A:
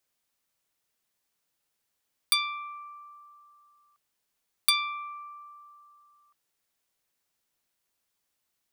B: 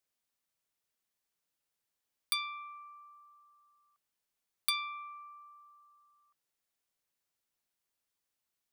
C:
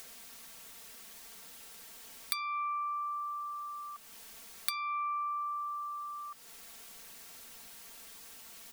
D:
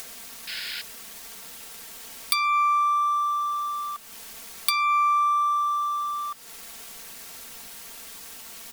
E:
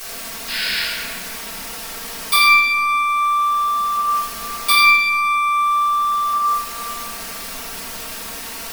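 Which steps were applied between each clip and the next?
dynamic EQ 7100 Hz, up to -4 dB, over -39 dBFS, Q 0.78; gain -7 dB
upward compressor, threshold -46 dBFS; comb 4.4 ms, depth 68%; compressor 16:1, threshold -43 dBFS, peak gain reduction 17.5 dB; gain +12 dB
sample leveller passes 1; sine folder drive 6 dB, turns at -8.5 dBFS; painted sound noise, 0.47–0.82, 1400–5300 Hz -34 dBFS
reverb RT60 2.2 s, pre-delay 3 ms, DRR -18.5 dB; gain -4 dB

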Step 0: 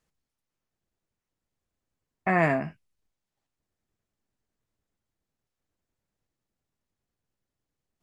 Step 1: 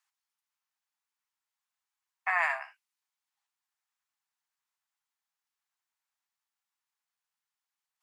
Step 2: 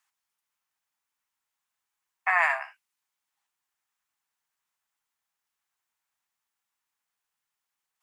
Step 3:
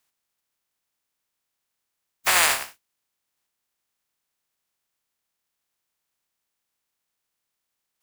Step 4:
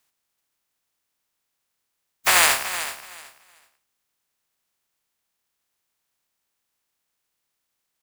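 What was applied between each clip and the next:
steep high-pass 820 Hz 48 dB/oct
bell 4500 Hz -3 dB; gain +5 dB
spectral contrast lowered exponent 0.2; gain +4.5 dB
feedback echo 0.376 s, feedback 20%, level -12 dB; gain +2.5 dB

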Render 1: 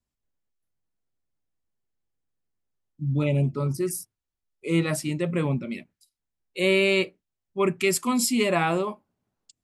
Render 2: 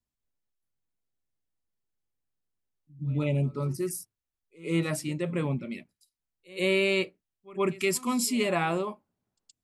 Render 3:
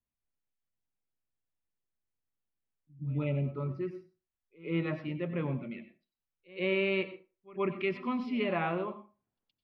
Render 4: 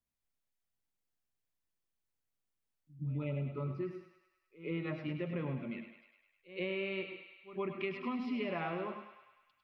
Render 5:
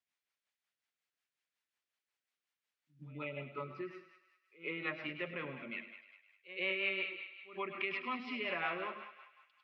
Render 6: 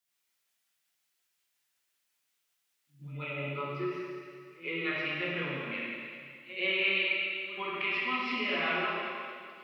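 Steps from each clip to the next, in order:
pre-echo 0.121 s -21 dB; gain -4 dB
inverse Chebyshev low-pass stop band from 7300 Hz, stop band 50 dB; on a send at -11.5 dB: reverb RT60 0.30 s, pre-delay 89 ms; on the sum: gain -4.5 dB
compressor, threshold -34 dBFS, peak gain reduction 8.5 dB; thinning echo 0.102 s, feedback 67%, high-pass 600 Hz, level -8 dB
rotary speaker horn 5.5 Hz; band-pass 2100 Hz, Q 0.79; gain +9.5 dB
high shelf 4300 Hz +11 dB; plate-style reverb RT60 2.1 s, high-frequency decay 0.95×, DRR -5 dB

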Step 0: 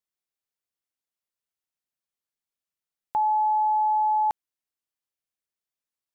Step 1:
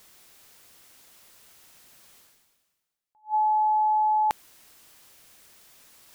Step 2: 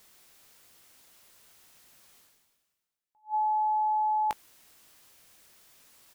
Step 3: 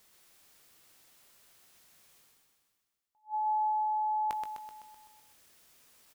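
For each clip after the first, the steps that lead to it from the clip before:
reverse; upward compressor, threshold -26 dBFS; reverse; attack slew limiter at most 330 dB/s
doubler 19 ms -11.5 dB; gain -4.5 dB
feedback echo 0.127 s, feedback 57%, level -5 dB; gain -5 dB

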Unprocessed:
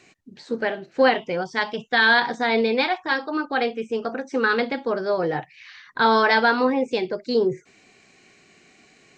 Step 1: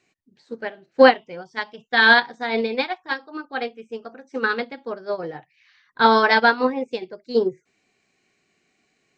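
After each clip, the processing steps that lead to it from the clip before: upward expander 2.5:1, over -27 dBFS; gain +6.5 dB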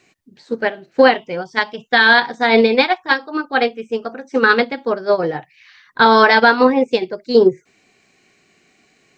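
maximiser +12 dB; gain -1 dB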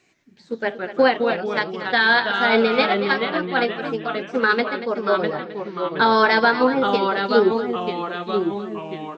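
echo 0.234 s -12.5 dB; echoes that change speed 90 ms, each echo -2 st, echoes 3, each echo -6 dB; gain -5.5 dB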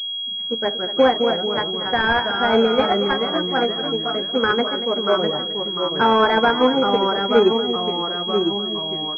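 pulse-width modulation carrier 3300 Hz; gain +1.5 dB

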